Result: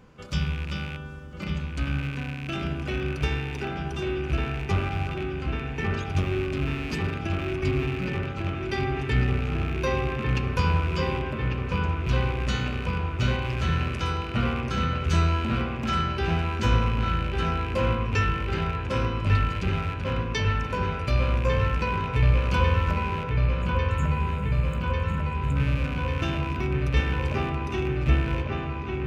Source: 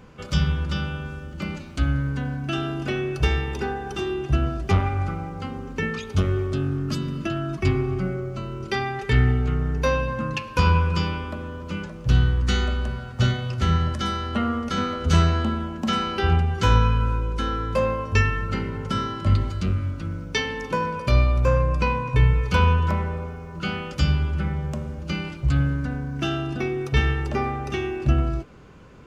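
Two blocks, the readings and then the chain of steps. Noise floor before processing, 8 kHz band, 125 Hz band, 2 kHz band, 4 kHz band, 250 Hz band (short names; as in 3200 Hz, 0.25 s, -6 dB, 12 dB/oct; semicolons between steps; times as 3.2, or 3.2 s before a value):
-38 dBFS, n/a, -2.5 dB, -1.5 dB, -3.5 dB, -3.0 dB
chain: rattling part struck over -27 dBFS, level -21 dBFS; spectral delete 23.45–25.56, 290–6500 Hz; dark delay 1.147 s, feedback 80%, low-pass 3000 Hz, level -4 dB; gain -5.5 dB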